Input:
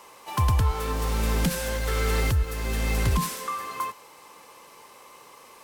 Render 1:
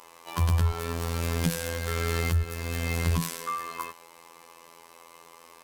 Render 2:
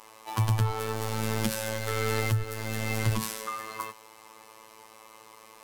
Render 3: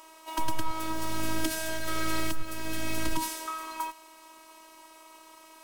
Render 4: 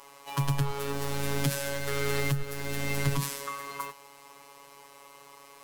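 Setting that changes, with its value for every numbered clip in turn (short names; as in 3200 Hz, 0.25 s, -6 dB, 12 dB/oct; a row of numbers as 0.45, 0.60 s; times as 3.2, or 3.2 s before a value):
robotiser, frequency: 84, 110, 320, 140 Hz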